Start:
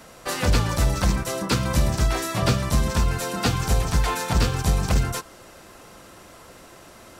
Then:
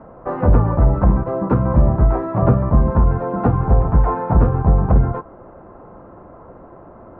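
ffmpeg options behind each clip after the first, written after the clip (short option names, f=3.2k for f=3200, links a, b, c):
-af "lowpass=f=1.1k:w=0.5412,lowpass=f=1.1k:w=1.3066,volume=7.5dB"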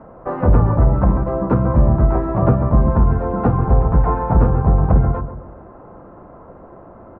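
-filter_complex "[0:a]asplit=2[a][b];[b]adelay=136,lowpass=f=920:p=1,volume=-9dB,asplit=2[c][d];[d]adelay=136,lowpass=f=920:p=1,volume=0.44,asplit=2[e][f];[f]adelay=136,lowpass=f=920:p=1,volume=0.44,asplit=2[g][h];[h]adelay=136,lowpass=f=920:p=1,volume=0.44,asplit=2[i][j];[j]adelay=136,lowpass=f=920:p=1,volume=0.44[k];[a][c][e][g][i][k]amix=inputs=6:normalize=0"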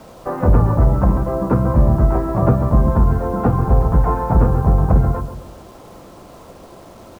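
-af "acrusher=bits=7:mix=0:aa=0.000001"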